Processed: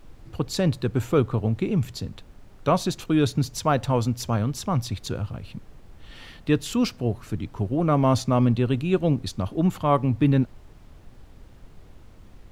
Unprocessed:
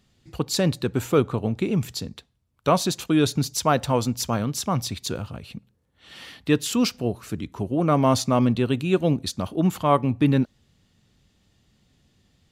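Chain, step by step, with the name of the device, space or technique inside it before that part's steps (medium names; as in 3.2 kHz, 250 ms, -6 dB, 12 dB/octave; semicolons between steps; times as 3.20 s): car interior (peaking EQ 100 Hz +7 dB 0.77 oct; treble shelf 4 kHz -6.5 dB; brown noise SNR 20 dB); trim -1.5 dB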